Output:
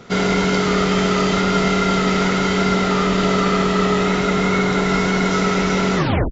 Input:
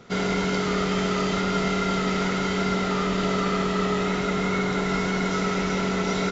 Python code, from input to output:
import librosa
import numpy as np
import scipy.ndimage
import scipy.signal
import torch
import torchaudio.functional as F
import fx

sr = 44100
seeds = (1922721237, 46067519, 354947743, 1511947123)

y = fx.tape_stop_end(x, sr, length_s=0.35)
y = y * 10.0 ** (7.0 / 20.0)